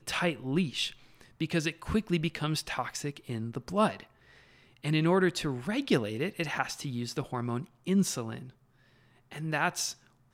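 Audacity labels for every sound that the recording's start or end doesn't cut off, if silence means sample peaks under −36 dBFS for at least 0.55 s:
4.840000	8.390000	sound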